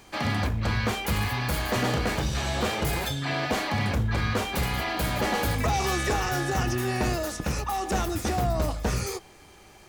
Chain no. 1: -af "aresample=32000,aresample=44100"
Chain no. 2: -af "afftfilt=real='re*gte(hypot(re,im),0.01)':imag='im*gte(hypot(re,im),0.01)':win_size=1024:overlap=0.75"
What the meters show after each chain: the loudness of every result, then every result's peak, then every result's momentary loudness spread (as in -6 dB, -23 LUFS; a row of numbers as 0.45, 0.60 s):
-27.5, -27.5 LUFS; -15.5, -15.5 dBFS; 3, 3 LU